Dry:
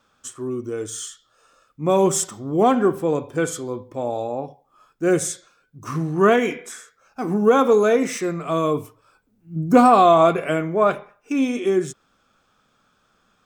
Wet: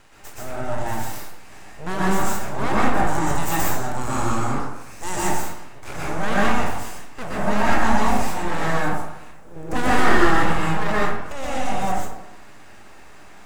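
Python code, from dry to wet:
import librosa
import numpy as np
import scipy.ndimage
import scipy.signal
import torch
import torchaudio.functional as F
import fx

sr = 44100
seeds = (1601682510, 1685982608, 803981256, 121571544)

y = fx.bin_compress(x, sr, power=0.6)
y = fx.peak_eq(y, sr, hz=7800.0, db=12.5, octaves=1.7, at=(3.07, 5.16))
y = np.abs(y)
y = fx.rev_plate(y, sr, seeds[0], rt60_s=0.86, hf_ratio=0.45, predelay_ms=110, drr_db=-7.0)
y = y * 10.0 ** (-10.5 / 20.0)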